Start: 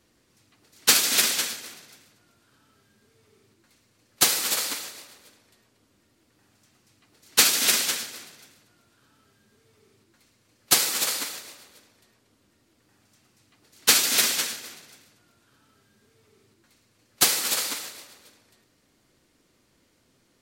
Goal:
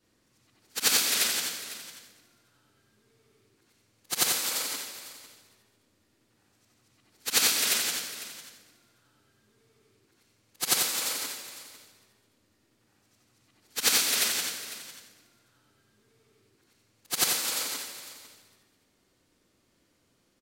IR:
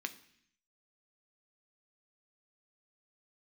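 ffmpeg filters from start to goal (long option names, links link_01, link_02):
-af "afftfilt=real='re':imag='-im':win_size=8192:overlap=0.75,aecho=1:1:501:0.168"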